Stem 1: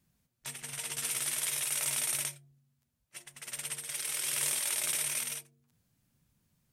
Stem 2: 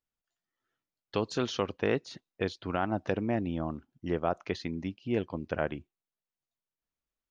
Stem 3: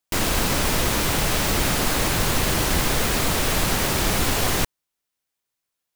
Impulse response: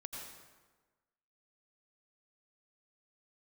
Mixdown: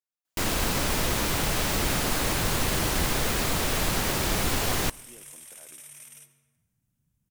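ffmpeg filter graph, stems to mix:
-filter_complex "[0:a]equalizer=frequency=4400:width_type=o:width=0.42:gain=-8.5,adelay=850,volume=-10.5dB,asplit=2[link_01][link_02];[link_02]volume=-11dB[link_03];[1:a]highpass=440,alimiter=level_in=1.5dB:limit=-24dB:level=0:latency=1,volume=-1.5dB,volume=-8dB[link_04];[2:a]adelay=250,volume=-5dB,asplit=2[link_05][link_06];[link_06]volume=-19dB[link_07];[link_01][link_04]amix=inputs=2:normalize=0,bass=frequency=250:gain=10,treble=frequency=4000:gain=5,acompressor=threshold=-46dB:ratio=5,volume=0dB[link_08];[3:a]atrim=start_sample=2205[link_09];[link_03][link_07]amix=inputs=2:normalize=0[link_10];[link_10][link_09]afir=irnorm=-1:irlink=0[link_11];[link_05][link_08][link_11]amix=inputs=3:normalize=0"

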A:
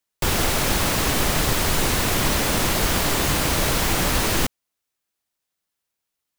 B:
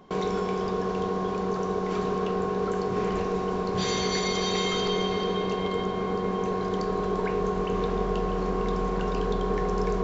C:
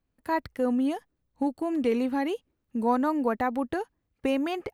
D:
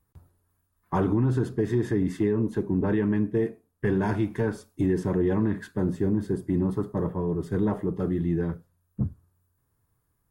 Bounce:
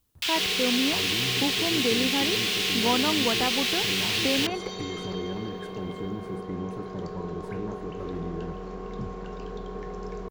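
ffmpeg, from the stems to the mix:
ffmpeg -i stem1.wav -i stem2.wav -i stem3.wav -i stem4.wav -filter_complex "[0:a]highpass=frequency=2900:width_type=q:width=1.9,highshelf=frequency=7400:gain=11,volume=-2dB[link_01];[1:a]equalizer=frequency=1000:width=5.5:gain=-2.5,adelay=250,volume=-9.5dB[link_02];[2:a]volume=-1.5dB[link_03];[3:a]alimiter=limit=-22.5dB:level=0:latency=1:release=157,volume=-5dB[link_04];[link_01][link_02][link_03][link_04]amix=inputs=4:normalize=0,acrossover=split=4800[link_05][link_06];[link_06]acompressor=threshold=-41dB:ratio=4:attack=1:release=60[link_07];[link_05][link_07]amix=inputs=2:normalize=0" out.wav

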